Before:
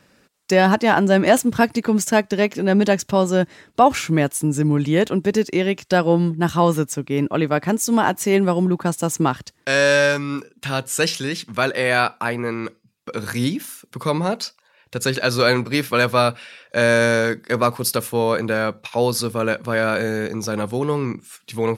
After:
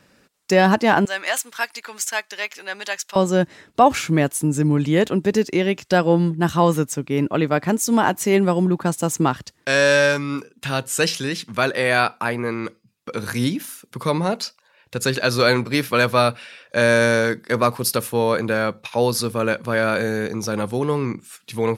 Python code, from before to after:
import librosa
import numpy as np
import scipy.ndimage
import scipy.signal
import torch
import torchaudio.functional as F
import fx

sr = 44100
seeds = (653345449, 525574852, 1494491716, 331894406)

y = fx.highpass(x, sr, hz=1300.0, slope=12, at=(1.05, 3.16))